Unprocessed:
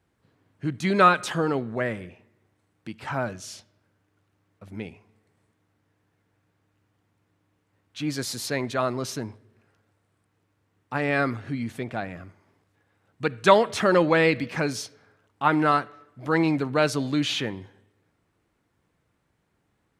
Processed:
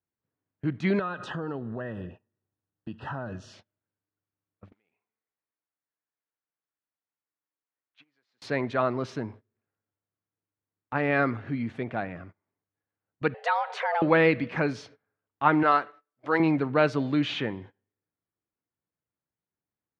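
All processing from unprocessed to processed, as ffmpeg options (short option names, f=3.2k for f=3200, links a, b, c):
-filter_complex "[0:a]asettb=1/sr,asplit=3[a][b][c];[a]atrim=end=0.994[d];[b]atrim=start=0.99:end=3.53,asetpts=PTS-STARTPTS,afade=t=in:d=0.004:c=qsin,afade=t=out:st=2.536:d=0.004:c=qsin,lowshelf=f=170:g=7.5,acompressor=threshold=-30dB:ratio=5:attack=3.2:release=140:knee=1:detection=peak,asuperstop=centerf=2200:order=20:qfactor=4.1[e];[c]atrim=start=3.526[f];[d][e]acrossfade=d=0.004:c1=hsin:c2=qsin[g];[g][f]acrossfade=d=0.004:c1=qsin:c2=hsin,asettb=1/sr,asplit=3[h][i][j];[h]atrim=end=4.724[k];[i]atrim=start=4.72:end=8.42,asetpts=PTS-STARTPTS,afade=t=in:d=0.004:c=qsin,afade=t=out:st=3.696:d=0.004:c=qsin,acompressor=threshold=-40dB:ratio=8:attack=3.2:release=140:knee=1:detection=peak,acrusher=bits=4:mode=log:mix=0:aa=0.000001,bandpass=f=1.9k:t=q:w=0.56[l];[j]atrim=start=8.416[m];[k][l]acrossfade=d=0.004:c1=hsin:c2=qsin[n];[n][m]acrossfade=d=0.004:c1=qsin:c2=hsin,asettb=1/sr,asplit=3[o][p][q];[o]atrim=end=13.344[r];[p]atrim=start=13.34:end=14.02,asetpts=PTS-STARTPTS,afade=t=in:d=0.004:c=qsin,afade=t=out:st=0.676:d=0.004:c=qsin,highpass=140,acompressor=threshold=-28dB:ratio=2:attack=3.2:release=140:knee=1:detection=peak,afreqshift=320[s];[q]atrim=start=14.016[t];[r][s]acrossfade=d=0.004:c1=hsin:c2=qsin[u];[u][t]acrossfade=d=0.004:c1=qsin:c2=hsin,asettb=1/sr,asplit=3[v][w][x];[v]atrim=end=15.634[y];[w]atrim=start=15.63:end=16.4,asetpts=PTS-STARTPTS,afade=t=in:d=0.004:c=qsin,afade=t=out:st=0.766:d=0.004:c=qsin,agate=range=-7dB:threshold=-47dB:ratio=16:release=100:detection=peak,bass=f=250:g=-14,treble=f=4k:g=7[z];[x]atrim=start=16.396[aa];[y][z]acrossfade=d=0.004:c1=hsin:c2=qsin[ab];[ab][aa]acrossfade=d=0.004:c1=qsin:c2=hsin,highpass=f=76:p=1,agate=range=-22dB:threshold=-45dB:ratio=16:detection=peak,lowpass=2.6k"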